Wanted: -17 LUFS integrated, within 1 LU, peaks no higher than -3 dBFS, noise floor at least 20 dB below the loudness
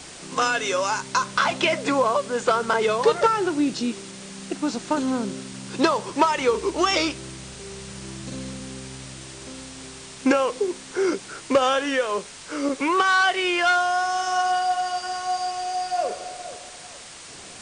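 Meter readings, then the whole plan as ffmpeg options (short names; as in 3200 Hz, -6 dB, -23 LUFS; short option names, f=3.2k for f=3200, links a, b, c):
noise floor -41 dBFS; noise floor target -43 dBFS; loudness -23.0 LUFS; peak -7.0 dBFS; loudness target -17.0 LUFS
-> -af "afftdn=nr=6:nf=-41"
-af "volume=6dB,alimiter=limit=-3dB:level=0:latency=1"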